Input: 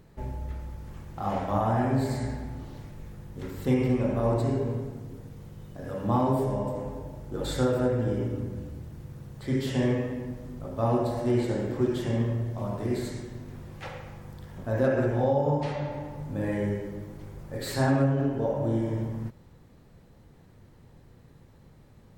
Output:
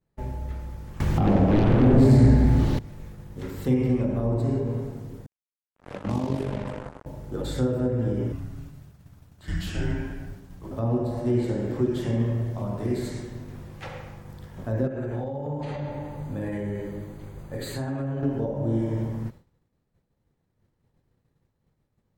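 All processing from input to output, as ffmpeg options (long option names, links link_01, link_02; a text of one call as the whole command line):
ffmpeg -i in.wav -filter_complex "[0:a]asettb=1/sr,asplit=3[link_01][link_02][link_03];[link_01]atrim=end=1.004[link_04];[link_02]atrim=start=1:end=2.79,asetpts=PTS-STARTPTS,afade=type=in:duration=0.004:curve=qsin,afade=type=out:start_time=1.786:duration=0.004:curve=qsin,equalizer=frequency=2700:width=0.36:gain=6,aeval=exprs='0.266*sin(PI/2*4.47*val(0)/0.266)':channel_layout=same[link_05];[link_03]atrim=start=2.786[link_06];[link_04][link_05]acrossfade=duration=0.004:curve1=hsin:curve2=qsin[link_07];[link_07][link_06]acrossfade=duration=0.004:curve1=qsin:curve2=hsin,asettb=1/sr,asplit=3[link_08][link_09][link_10];[link_08]atrim=end=5.264[link_11];[link_09]atrim=start=5.26:end=7.06,asetpts=PTS-STARTPTS,afade=type=in:duration=0.004:curve=qsin,afade=type=out:start_time=1.796:duration=0.004:curve=qsin,lowpass=frequency=10000:width=0.5412,lowpass=frequency=10000:width=1.3066,acrusher=bits=4:mix=0:aa=0.5,tremolo=f=48:d=0.71[link_12];[link_10]atrim=start=7.056[link_13];[link_11][link_12]acrossfade=duration=0.004:curve1=hsin:curve2=qsin[link_14];[link_14][link_13]acrossfade=duration=0.004:curve1=qsin:curve2=hsin,asettb=1/sr,asplit=3[link_15][link_16][link_17];[link_15]atrim=end=8.324[link_18];[link_16]atrim=start=8.32:end=10.71,asetpts=PTS-STARTPTS,afade=type=in:duration=0.004:curve=qsin,afade=type=out:start_time=2.386:duration=0.004:curve=qsin,lowshelf=frequency=430:gain=-5.5,afreqshift=-220[link_19];[link_17]atrim=start=10.706[link_20];[link_18][link_19]acrossfade=duration=0.004:curve1=hsin:curve2=qsin[link_21];[link_21][link_20]acrossfade=duration=0.004:curve1=qsin:curve2=hsin,asettb=1/sr,asplit=3[link_22][link_23][link_24];[link_22]atrim=end=14.874[link_25];[link_23]atrim=start=14.87:end=18.23,asetpts=PTS-STARTPTS,afade=type=in:duration=0.004:curve=qsin,afade=type=out:start_time=3.356:duration=0.004:curve=qsin,acompressor=threshold=-28dB:ratio=6:attack=3.2:release=140:knee=1:detection=peak,asuperstop=centerf=5400:order=8:qfactor=6.2[link_26];[link_24]atrim=start=18.226[link_27];[link_25][link_26]acrossfade=duration=0.004:curve1=hsin:curve2=qsin[link_28];[link_28][link_27]acrossfade=duration=0.004:curve1=qsin:curve2=hsin,agate=range=-33dB:threshold=-40dB:ratio=3:detection=peak,acrossover=split=440[link_29][link_30];[link_30]acompressor=threshold=-38dB:ratio=10[link_31];[link_29][link_31]amix=inputs=2:normalize=0,volume=2.5dB" out.wav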